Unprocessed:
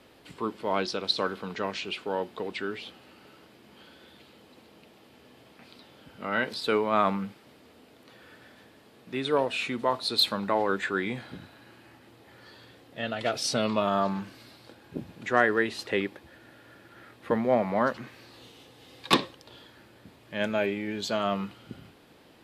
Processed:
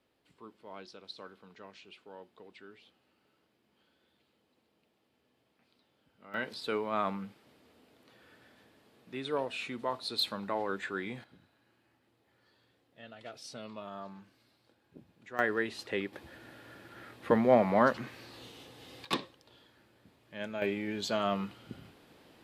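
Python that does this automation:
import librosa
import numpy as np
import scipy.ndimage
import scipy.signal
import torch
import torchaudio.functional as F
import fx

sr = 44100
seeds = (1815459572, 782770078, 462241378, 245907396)

y = fx.gain(x, sr, db=fx.steps((0.0, -19.5), (6.34, -8.0), (11.24, -18.0), (15.39, -6.5), (16.13, 0.5), (19.05, -10.5), (20.62, -3.0)))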